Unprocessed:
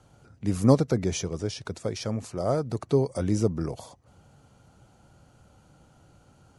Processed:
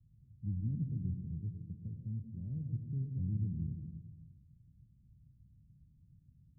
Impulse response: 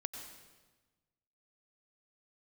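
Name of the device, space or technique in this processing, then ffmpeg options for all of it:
club heard from the street: -filter_complex "[0:a]alimiter=limit=-16.5dB:level=0:latency=1,lowpass=f=170:w=0.5412,lowpass=f=170:w=1.3066[a];[1:a]atrim=start_sample=2205[b];[a][b]afir=irnorm=-1:irlink=0,volume=-2.5dB"

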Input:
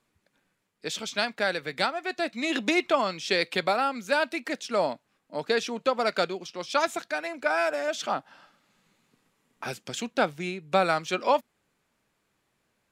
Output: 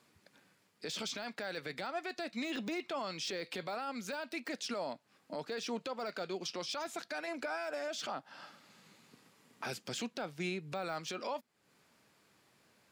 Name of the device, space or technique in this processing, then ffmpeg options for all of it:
broadcast voice chain: -af "highpass=97,deesser=0.85,acompressor=threshold=-42dB:ratio=3,equalizer=f=4.8k:t=o:w=0.38:g=5,alimiter=level_in=11dB:limit=-24dB:level=0:latency=1:release=12,volume=-11dB,volume=5.5dB"

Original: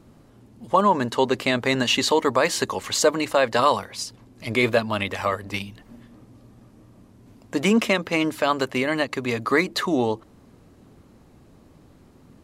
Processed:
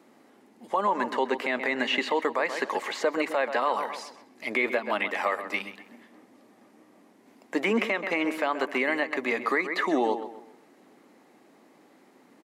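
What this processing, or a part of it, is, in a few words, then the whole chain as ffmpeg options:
laptop speaker: -filter_complex "[0:a]acrossover=split=3000[a][b];[b]acompressor=threshold=-42dB:ratio=4:attack=1:release=60[c];[a][c]amix=inputs=2:normalize=0,highpass=f=250:w=0.5412,highpass=f=250:w=1.3066,equalizer=f=800:t=o:w=0.4:g=5,equalizer=f=2k:t=o:w=0.51:g=8,asplit=2[d][e];[e]adelay=130,lowpass=f=3.1k:p=1,volume=-11.5dB,asplit=2[f][g];[g]adelay=130,lowpass=f=3.1k:p=1,volume=0.37,asplit=2[h][i];[i]adelay=130,lowpass=f=3.1k:p=1,volume=0.37,asplit=2[j][k];[k]adelay=130,lowpass=f=3.1k:p=1,volume=0.37[l];[d][f][h][j][l]amix=inputs=5:normalize=0,alimiter=limit=-12.5dB:level=0:latency=1:release=164,volume=-2.5dB"

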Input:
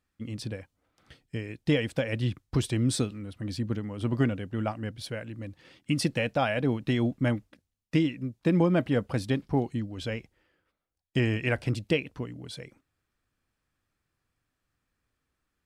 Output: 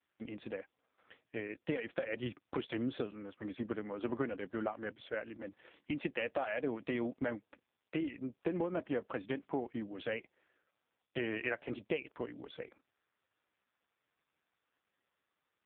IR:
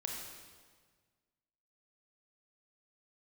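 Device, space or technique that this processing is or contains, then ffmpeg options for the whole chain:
voicemail: -af "highpass=380,lowpass=2.7k,acompressor=threshold=-33dB:ratio=10,volume=2.5dB" -ar 8000 -c:a libopencore_amrnb -b:a 4750

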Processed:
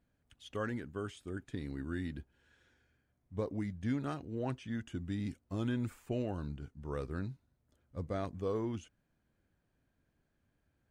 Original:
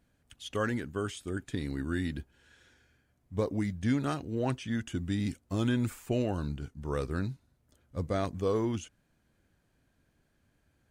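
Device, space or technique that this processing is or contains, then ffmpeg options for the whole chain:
behind a face mask: -af "highshelf=f=3.5k:g=-7.5,volume=-6dB"

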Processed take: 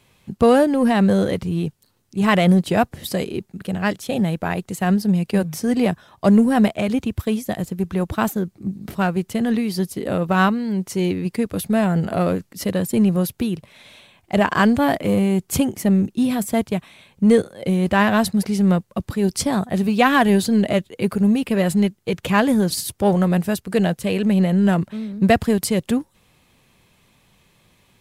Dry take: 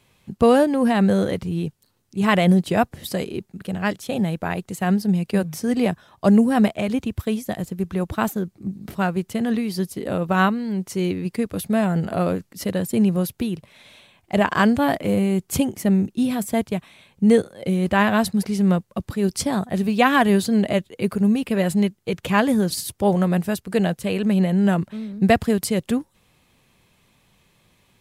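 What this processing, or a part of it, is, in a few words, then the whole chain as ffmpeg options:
parallel distortion: -filter_complex "[0:a]asplit=2[a][b];[b]asoftclip=type=hard:threshold=-19.5dB,volume=-9.5dB[c];[a][c]amix=inputs=2:normalize=0"

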